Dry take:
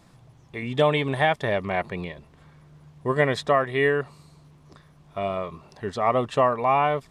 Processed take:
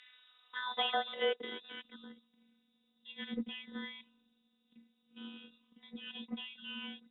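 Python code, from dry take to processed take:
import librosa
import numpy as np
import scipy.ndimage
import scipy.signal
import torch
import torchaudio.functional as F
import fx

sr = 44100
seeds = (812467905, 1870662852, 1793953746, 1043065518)

y = fx.robotise(x, sr, hz=255.0)
y = fx.freq_invert(y, sr, carrier_hz=3800)
y = fx.filter_sweep_bandpass(y, sr, from_hz=1900.0, to_hz=230.0, start_s=0.01, end_s=2.0, q=3.9)
y = y * librosa.db_to_amplitude(10.0)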